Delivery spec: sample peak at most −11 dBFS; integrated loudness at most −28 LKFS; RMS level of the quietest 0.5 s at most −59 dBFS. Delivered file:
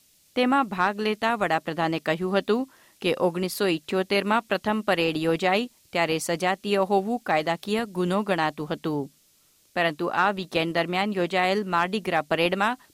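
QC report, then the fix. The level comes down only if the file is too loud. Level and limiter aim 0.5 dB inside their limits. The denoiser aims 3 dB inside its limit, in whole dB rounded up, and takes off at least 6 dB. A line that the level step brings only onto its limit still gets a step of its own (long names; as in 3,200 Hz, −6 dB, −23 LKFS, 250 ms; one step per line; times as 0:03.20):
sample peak −9.5 dBFS: out of spec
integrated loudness −25.0 LKFS: out of spec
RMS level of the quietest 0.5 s −62 dBFS: in spec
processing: level −3.5 dB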